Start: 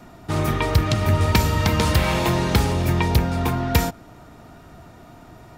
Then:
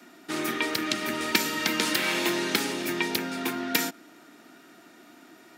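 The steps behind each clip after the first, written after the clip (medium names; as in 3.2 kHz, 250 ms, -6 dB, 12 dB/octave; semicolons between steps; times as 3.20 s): high-pass 280 Hz 24 dB/octave; high-order bell 710 Hz -10 dB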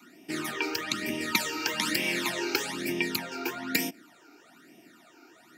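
phase shifter stages 12, 1.1 Hz, lowest notch 180–1400 Hz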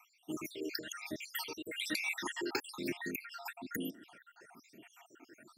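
random holes in the spectrogram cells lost 72%; reverse; upward compressor, threshold -45 dBFS; reverse; trim -4.5 dB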